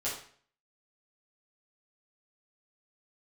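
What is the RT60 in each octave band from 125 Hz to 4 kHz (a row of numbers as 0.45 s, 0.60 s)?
0.55 s, 0.50 s, 0.50 s, 0.50 s, 0.50 s, 0.45 s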